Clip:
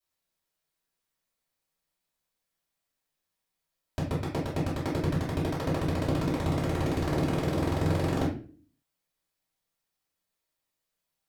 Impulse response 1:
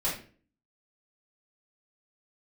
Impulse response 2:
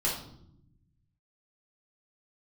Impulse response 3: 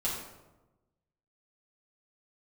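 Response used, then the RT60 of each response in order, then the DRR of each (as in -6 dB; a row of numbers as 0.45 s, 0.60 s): 1; 0.40 s, 0.75 s, 1.1 s; -9.5 dB, -5.5 dB, -7.5 dB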